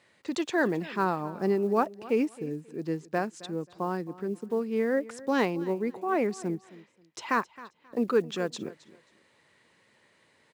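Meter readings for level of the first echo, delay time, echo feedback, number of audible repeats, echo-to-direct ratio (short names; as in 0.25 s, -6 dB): -19.0 dB, 0.267 s, 24%, 2, -19.0 dB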